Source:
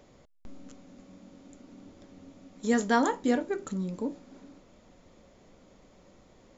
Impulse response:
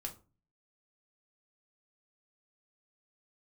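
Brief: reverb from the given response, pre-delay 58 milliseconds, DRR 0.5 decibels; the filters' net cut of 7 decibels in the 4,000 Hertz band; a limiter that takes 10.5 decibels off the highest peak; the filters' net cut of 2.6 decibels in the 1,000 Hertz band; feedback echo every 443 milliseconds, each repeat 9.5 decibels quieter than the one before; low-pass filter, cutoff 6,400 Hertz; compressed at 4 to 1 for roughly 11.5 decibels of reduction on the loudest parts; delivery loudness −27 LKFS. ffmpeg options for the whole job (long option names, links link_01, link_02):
-filter_complex "[0:a]lowpass=6400,equalizer=frequency=1000:width_type=o:gain=-3,equalizer=frequency=4000:width_type=o:gain=-8.5,acompressor=threshold=-35dB:ratio=4,alimiter=level_in=12dB:limit=-24dB:level=0:latency=1,volume=-12dB,aecho=1:1:443|886|1329|1772:0.335|0.111|0.0365|0.012,asplit=2[link_01][link_02];[1:a]atrim=start_sample=2205,adelay=58[link_03];[link_02][link_03]afir=irnorm=-1:irlink=0,volume=1.5dB[link_04];[link_01][link_04]amix=inputs=2:normalize=0,volume=17.5dB"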